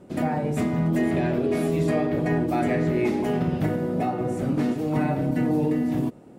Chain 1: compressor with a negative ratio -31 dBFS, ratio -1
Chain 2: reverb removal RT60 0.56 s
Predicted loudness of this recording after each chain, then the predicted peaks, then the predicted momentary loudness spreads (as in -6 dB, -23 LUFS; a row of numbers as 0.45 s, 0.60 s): -31.5 LUFS, -26.0 LUFS; -13.5 dBFS, -12.5 dBFS; 3 LU, 3 LU